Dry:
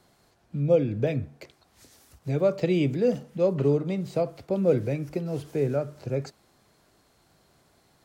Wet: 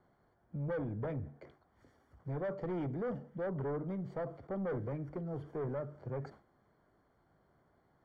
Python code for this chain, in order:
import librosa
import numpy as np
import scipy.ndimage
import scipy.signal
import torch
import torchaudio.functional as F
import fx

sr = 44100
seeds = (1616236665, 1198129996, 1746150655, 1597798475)

y = 10.0 ** (-26.5 / 20.0) * np.tanh(x / 10.0 ** (-26.5 / 20.0))
y = scipy.signal.savgol_filter(y, 41, 4, mode='constant')
y = fx.sustainer(y, sr, db_per_s=140.0)
y = F.gain(torch.from_numpy(y), -7.0).numpy()